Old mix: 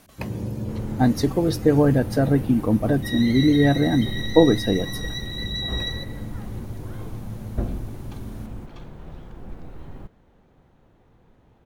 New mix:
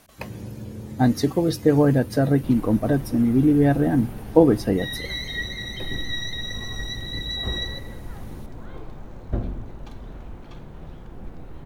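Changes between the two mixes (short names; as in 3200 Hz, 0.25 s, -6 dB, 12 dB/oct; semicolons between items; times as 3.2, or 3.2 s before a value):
first sound -6.5 dB; second sound: entry +1.75 s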